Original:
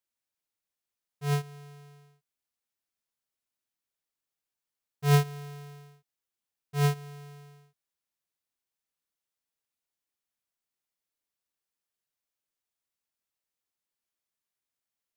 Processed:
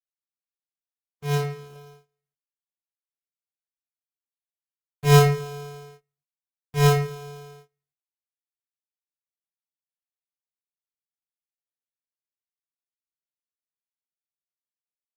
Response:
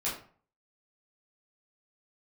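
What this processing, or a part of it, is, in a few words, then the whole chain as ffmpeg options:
speakerphone in a meeting room: -filter_complex "[1:a]atrim=start_sample=2205[a];[0:a][a]afir=irnorm=-1:irlink=0,dynaudnorm=f=400:g=11:m=5dB,agate=range=-26dB:threshold=-49dB:ratio=16:detection=peak,volume=1.5dB" -ar 48000 -c:a libopus -b:a 16k

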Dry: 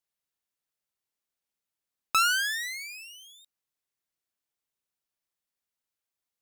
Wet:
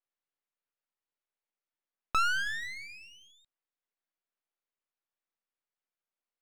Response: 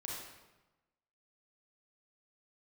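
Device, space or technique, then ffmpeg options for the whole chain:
crystal radio: -filter_complex "[0:a]asplit=3[a][b][c];[a]afade=t=out:st=2.34:d=0.02[d];[b]bandreject=f=234.6:t=h:w=4,bandreject=f=469.2:t=h:w=4,bandreject=f=703.8:t=h:w=4,bandreject=f=938.4:t=h:w=4,bandreject=f=1.173k:t=h:w=4,bandreject=f=1.4076k:t=h:w=4,bandreject=f=1.6422k:t=h:w=4,bandreject=f=1.8768k:t=h:w=4,bandreject=f=2.1114k:t=h:w=4,bandreject=f=2.346k:t=h:w=4,bandreject=f=2.5806k:t=h:w=4,bandreject=f=2.8152k:t=h:w=4,bandreject=f=3.0498k:t=h:w=4,bandreject=f=3.2844k:t=h:w=4,bandreject=f=3.519k:t=h:w=4,bandreject=f=3.7536k:t=h:w=4,bandreject=f=3.9882k:t=h:w=4,bandreject=f=4.2228k:t=h:w=4,bandreject=f=4.4574k:t=h:w=4,afade=t=in:st=2.34:d=0.02,afade=t=out:st=3.3:d=0.02[e];[c]afade=t=in:st=3.3:d=0.02[f];[d][e][f]amix=inputs=3:normalize=0,highpass=280,lowpass=2.5k,aeval=exprs='if(lt(val(0),0),0.251*val(0),val(0))':c=same,volume=1.5dB"

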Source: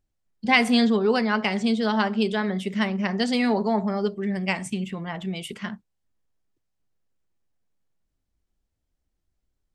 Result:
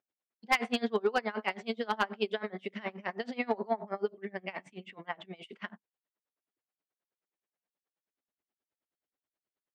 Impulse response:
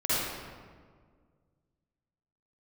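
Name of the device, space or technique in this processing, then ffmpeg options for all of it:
helicopter radio: -filter_complex "[0:a]highpass=390,lowpass=3k,aeval=exprs='val(0)*pow(10,-26*(0.5-0.5*cos(2*PI*9.4*n/s))/20)':c=same,asoftclip=type=hard:threshold=-18dB,asettb=1/sr,asplit=3[a][b][c];[a]atrim=end=3.164[d];[b]atrim=start=3.16:end=4.85,asetpts=PTS-STARTPTS,afade=t=in:d=0.004:c=qsin,afade=t=out:st=1.686:d=0.004:c=qsin,highshelf=f=4.7k:g=-7[e];[c]atrim=start=4.846[f];[d][e]acrossfade=d=0.004:c1=hsin:c2=qsin[g];[g][f]acrossfade=d=0.004:c1=qsin:c2=hsin"

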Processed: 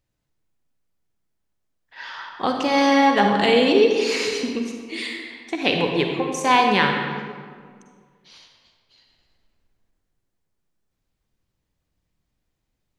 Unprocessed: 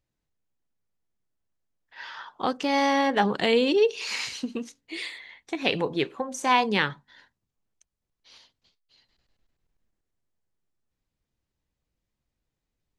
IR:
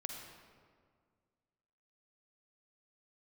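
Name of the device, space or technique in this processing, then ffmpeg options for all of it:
stairwell: -filter_complex "[1:a]atrim=start_sample=2205[a];[0:a][a]afir=irnorm=-1:irlink=0,volume=7dB"

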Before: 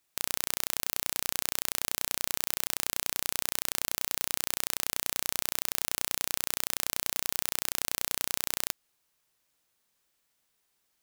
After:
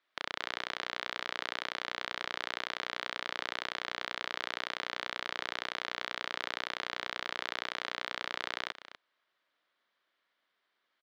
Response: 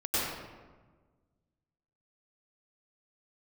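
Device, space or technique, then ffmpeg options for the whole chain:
phone earpiece: -af "highpass=430,equalizer=f=450:t=q:w=4:g=-6,equalizer=f=830:t=q:w=4:g=-8,equalizer=f=2.6k:t=q:w=4:g=-8,lowpass=f=3.3k:w=0.5412,lowpass=f=3.3k:w=1.3066,aecho=1:1:246:0.211,volume=5.5dB"

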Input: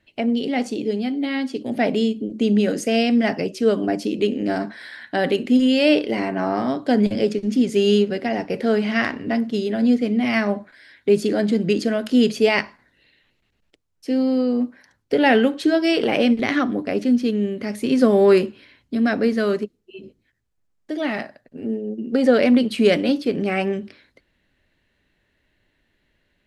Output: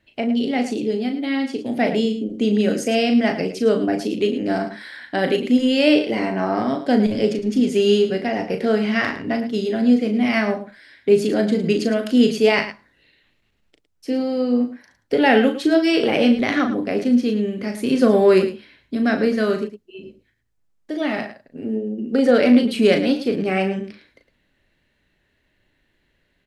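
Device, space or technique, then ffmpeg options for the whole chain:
slapback doubling: -filter_complex "[0:a]asplit=3[a][b][c];[b]adelay=37,volume=-7dB[d];[c]adelay=109,volume=-12dB[e];[a][d][e]amix=inputs=3:normalize=0"

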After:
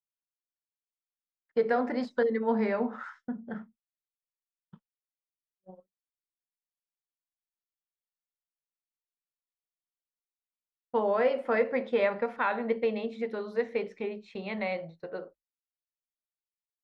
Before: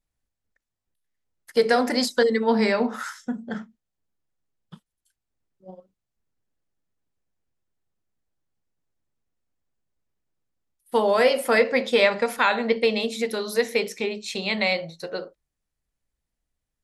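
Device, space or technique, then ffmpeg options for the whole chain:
hearing-loss simulation: -af "lowpass=1.7k,agate=range=-33dB:threshold=-40dB:ratio=3:detection=peak,volume=-6.5dB"

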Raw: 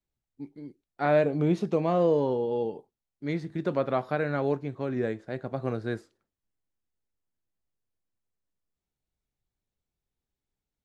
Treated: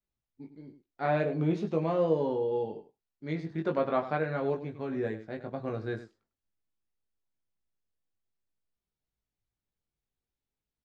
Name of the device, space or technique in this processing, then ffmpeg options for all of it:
slapback doubling: -filter_complex "[0:a]asplit=3[a][b][c];[b]adelay=19,volume=-3.5dB[d];[c]adelay=101,volume=-12dB[e];[a][d][e]amix=inputs=3:normalize=0,lowpass=5.7k,asettb=1/sr,asplit=3[f][g][h];[f]atrim=end=3.464[i];[g]atrim=start=3.46:end=4.18,asetpts=PTS-STARTPTS,afade=t=in:d=0.004:c=qsin,afade=t=out:st=0.716:d=0.004:c=qsin,equalizer=f=1.1k:w=0.44:g=4[j];[h]atrim=start=4.176[k];[i][j]acrossfade=d=0.004:c1=hsin:c2=qsin[l];[l][k]acrossfade=d=0.004:c1=qsin:c2=hsin,volume=-5dB"

